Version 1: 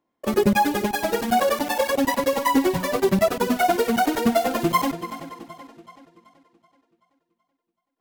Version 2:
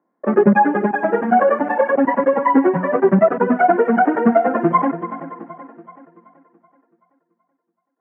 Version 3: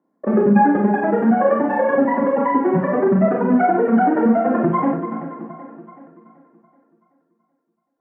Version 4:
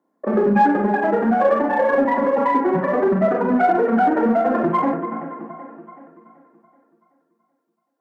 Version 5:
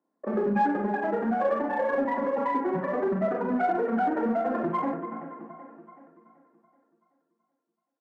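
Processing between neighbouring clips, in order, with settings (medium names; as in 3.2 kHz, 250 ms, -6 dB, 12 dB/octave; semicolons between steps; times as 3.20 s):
elliptic band-pass 170–1700 Hz, stop band 40 dB; trim +6.5 dB
bass shelf 390 Hz +10.5 dB; peak limiter -5 dBFS, peak gain reduction 10 dB; Schroeder reverb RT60 0.31 s, combs from 28 ms, DRR 0.5 dB; trim -5.5 dB
high-pass 350 Hz 6 dB/octave; in parallel at -11 dB: hard clipper -19.5 dBFS, distortion -9 dB
resampled via 22.05 kHz; trim -9 dB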